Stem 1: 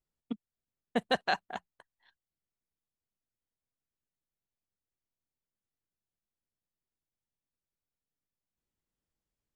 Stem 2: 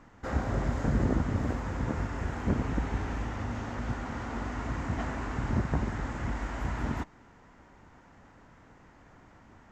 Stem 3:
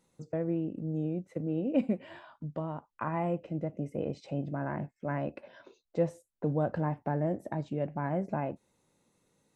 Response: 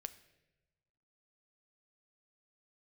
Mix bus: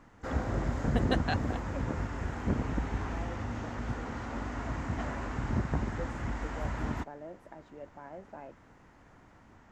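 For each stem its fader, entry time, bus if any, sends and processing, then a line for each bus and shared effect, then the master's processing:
−4.0 dB, 0.00 s, no send, no processing
−2.0 dB, 0.00 s, no send, no processing
−11.5 dB, 0.00 s, no send, high-pass filter 330 Hz 12 dB per octave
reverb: not used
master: no processing

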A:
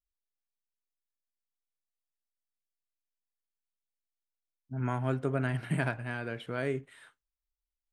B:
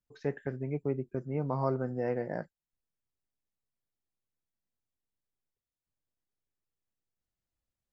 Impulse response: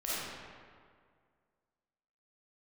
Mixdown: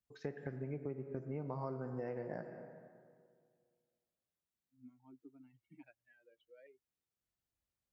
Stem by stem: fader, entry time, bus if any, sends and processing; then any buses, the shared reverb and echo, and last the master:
−11.0 dB, 0.00 s, no send, spectral dynamics exaggerated over time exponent 3; formant filter that steps through the vowels 1.2 Hz
−3.5 dB, 0.00 s, send −14.5 dB, no processing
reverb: on, RT60 2.0 s, pre-delay 10 ms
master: high-pass filter 42 Hz; downward compressor 6 to 1, threshold −38 dBFS, peak gain reduction 11 dB

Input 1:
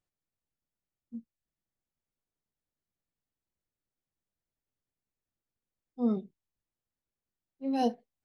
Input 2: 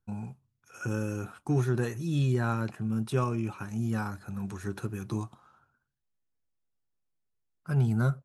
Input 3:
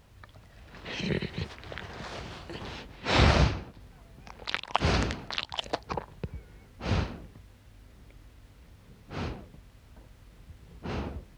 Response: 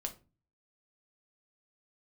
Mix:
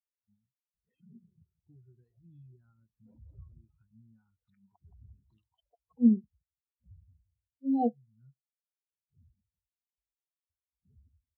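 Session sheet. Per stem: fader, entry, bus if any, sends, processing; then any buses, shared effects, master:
+2.5 dB, 0.00 s, no bus, send −13.5 dB, no echo send, no processing
−3.0 dB, 0.20 s, bus A, no send, no echo send, automatic ducking −13 dB, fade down 1.10 s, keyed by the first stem
−3.5 dB, 0.00 s, bus A, no send, echo send −10.5 dB, expanding power law on the bin magnitudes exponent 2.6; Bessel low-pass filter 1,400 Hz, order 2; noise gate with hold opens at −44 dBFS
bus A: 0.0 dB, high-shelf EQ 2,000 Hz +8 dB; downward compressor 5 to 1, threshold −34 dBFS, peak gain reduction 12.5 dB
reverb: on, RT60 0.30 s, pre-delay 6 ms
echo: repeating echo 170 ms, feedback 43%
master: parametric band 4,000 Hz +5.5 dB 0.45 octaves; every bin expanded away from the loudest bin 2.5 to 1

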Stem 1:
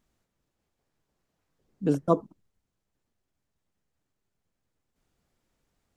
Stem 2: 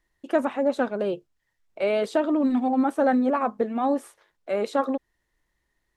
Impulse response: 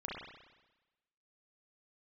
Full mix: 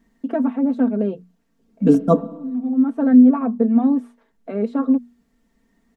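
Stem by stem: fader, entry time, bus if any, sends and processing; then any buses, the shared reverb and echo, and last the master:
+1.5 dB, 0.00 s, send −15.5 dB, no processing
−3.0 dB, 0.00 s, no send, low-pass filter 1,000 Hz 6 dB per octave; mains-hum notches 60/120/180/240 Hz; multiband upward and downward compressor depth 40%; automatic ducking −22 dB, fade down 0.55 s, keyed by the first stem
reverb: on, RT60 1.1 s, pre-delay 32 ms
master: parametric band 240 Hz +13.5 dB 0.82 octaves; comb filter 4.4 ms, depth 74%

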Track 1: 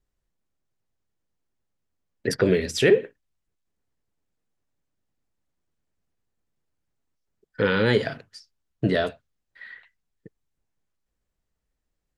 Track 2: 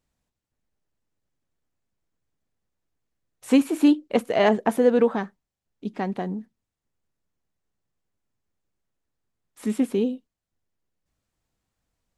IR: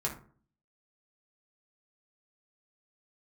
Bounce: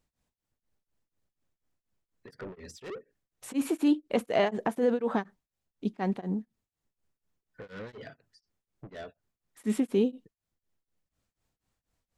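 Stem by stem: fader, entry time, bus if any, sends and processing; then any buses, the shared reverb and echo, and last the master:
−12.5 dB, 0.00 s, no send, gate on every frequency bin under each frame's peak −25 dB strong; soft clipping −23.5 dBFS, distortion −6 dB
+0.5 dB, 0.00 s, no send, brickwall limiter −16.5 dBFS, peak gain reduction 9 dB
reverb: not used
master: tremolo along a rectified sine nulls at 4.1 Hz

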